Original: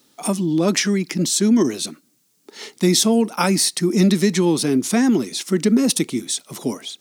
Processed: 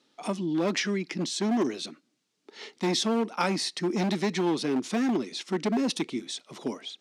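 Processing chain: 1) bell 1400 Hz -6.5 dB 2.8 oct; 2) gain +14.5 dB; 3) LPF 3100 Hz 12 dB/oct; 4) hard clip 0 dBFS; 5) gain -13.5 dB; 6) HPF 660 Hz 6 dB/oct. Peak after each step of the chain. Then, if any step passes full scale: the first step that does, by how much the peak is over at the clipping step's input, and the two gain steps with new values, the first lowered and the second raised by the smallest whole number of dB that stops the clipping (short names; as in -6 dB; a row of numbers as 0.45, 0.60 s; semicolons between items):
-6.0, +8.5, +7.0, 0.0, -13.5, -12.5 dBFS; step 2, 7.0 dB; step 2 +7.5 dB, step 5 -6.5 dB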